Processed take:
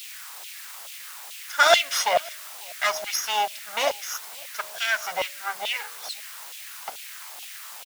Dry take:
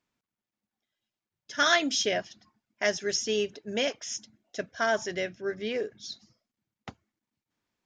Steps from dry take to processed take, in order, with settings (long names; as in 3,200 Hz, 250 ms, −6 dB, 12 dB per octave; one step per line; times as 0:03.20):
lower of the sound and its delayed copy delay 1.4 ms
low-shelf EQ 440 Hz +8.5 dB
hum removal 62.68 Hz, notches 11
in parallel at −5 dB: bit-depth reduction 6 bits, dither triangular
on the sum: auto-filter high-pass saw down 2.3 Hz 630–3,100 Hz
slap from a distant wall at 94 metres, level −25 dB